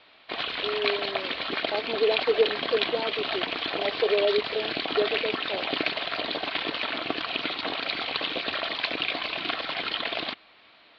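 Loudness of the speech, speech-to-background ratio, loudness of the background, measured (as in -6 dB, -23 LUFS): -29.0 LUFS, -0.5 dB, -28.5 LUFS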